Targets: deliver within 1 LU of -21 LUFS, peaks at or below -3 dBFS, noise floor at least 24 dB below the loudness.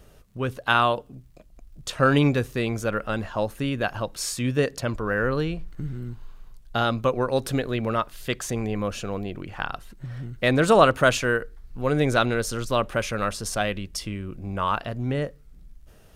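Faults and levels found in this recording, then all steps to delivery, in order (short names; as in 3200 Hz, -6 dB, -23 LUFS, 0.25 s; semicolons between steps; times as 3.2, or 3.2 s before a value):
ticks 37/s; loudness -25.0 LUFS; peak -2.5 dBFS; loudness target -21.0 LUFS
-> de-click; gain +4 dB; limiter -3 dBFS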